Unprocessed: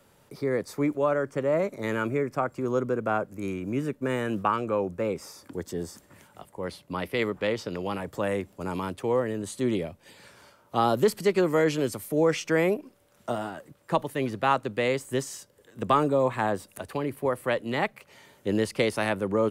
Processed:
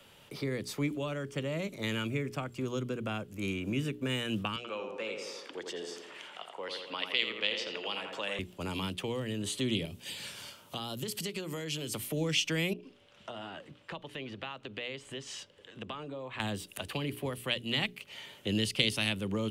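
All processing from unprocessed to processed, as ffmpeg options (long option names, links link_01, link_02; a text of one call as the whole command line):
ffmpeg -i in.wav -filter_complex "[0:a]asettb=1/sr,asplit=3[link_01][link_02][link_03];[link_01]atrim=end=4.564[link_04];[link_02]atrim=start=4.56:end=8.39,asetpts=PTS-STARTPTS,afade=type=in:duration=0.004:curve=qsin,afade=type=out:start_time=3.826:duration=0.004:curve=qsin,highpass=480,lowpass=6000,acompressor=mode=upward:threshold=-45dB:ratio=2.5:attack=3.2:release=140:knee=2.83:detection=peak,asplit=2[link_05][link_06];[link_06]adelay=84,lowpass=frequency=2600:poles=1,volume=-5dB,asplit=2[link_07][link_08];[link_08]adelay=84,lowpass=frequency=2600:poles=1,volume=0.52,asplit=2[link_09][link_10];[link_10]adelay=84,lowpass=frequency=2600:poles=1,volume=0.52,asplit=2[link_11][link_12];[link_12]adelay=84,lowpass=frequency=2600:poles=1,volume=0.52,asplit=2[link_13][link_14];[link_14]adelay=84,lowpass=frequency=2600:poles=1,volume=0.52,asplit=2[link_15][link_16];[link_16]adelay=84,lowpass=frequency=2600:poles=1,volume=0.52,asplit=2[link_17][link_18];[link_18]adelay=84,lowpass=frequency=2600:poles=1,volume=0.52[link_19];[link_05][link_07][link_09][link_11][link_13][link_15][link_17][link_19]amix=inputs=8:normalize=0,atrim=end_sample=168903[link_20];[link_03]atrim=start=8.386[link_21];[link_04][link_20]acrossfade=duration=0.004:curve1=hsin:curve2=qsin[link_22];[link_22][link_21]acrossfade=duration=0.004:curve1=qsin:curve2=hsin,asettb=1/sr,asplit=3[link_23][link_24][link_25];[link_23]atrim=end=9.854[link_26];[link_24]atrim=start=9.85:end=11.94,asetpts=PTS-STARTPTS,afade=type=in:duration=0.004:curve=qsin,afade=type=out:start_time=2.086:duration=0.004:curve=qsin,highpass=94,bass=frequency=250:gain=8,treble=frequency=4000:gain=11,acompressor=threshold=-38dB:ratio=3:attack=3.2:release=140:knee=1:detection=peak[link_27];[link_25]atrim=start=11.936[link_28];[link_26][link_27]acrossfade=duration=0.004:curve1=hsin:curve2=qsin[link_29];[link_29][link_28]acrossfade=duration=0.004:curve1=qsin:curve2=hsin,asettb=1/sr,asplit=3[link_30][link_31][link_32];[link_30]atrim=end=12.734[link_33];[link_31]atrim=start=12.73:end=16.4,asetpts=PTS-STARTPTS,afade=type=in:duration=0.004:curve=qsin,afade=type=out:start_time=3.666:duration=0.004:curve=qsin,lowpass=5500,acompressor=threshold=-42dB:ratio=3:attack=3.2:release=140:knee=1:detection=peak[link_34];[link_32]atrim=start=16.396[link_35];[link_33][link_34]acrossfade=duration=0.004:curve1=hsin:curve2=qsin[link_36];[link_36][link_35]acrossfade=duration=0.004:curve1=qsin:curve2=hsin,equalizer=frequency=3000:width_type=o:width=0.82:gain=14,bandreject=frequency=60:width_type=h:width=6,bandreject=frequency=120:width_type=h:width=6,bandreject=frequency=180:width_type=h:width=6,bandreject=frequency=240:width_type=h:width=6,bandreject=frequency=300:width_type=h:width=6,bandreject=frequency=360:width_type=h:width=6,bandreject=frequency=420:width_type=h:width=6,acrossover=split=240|3000[link_37][link_38][link_39];[link_38]acompressor=threshold=-38dB:ratio=6[link_40];[link_37][link_40][link_39]amix=inputs=3:normalize=0" out.wav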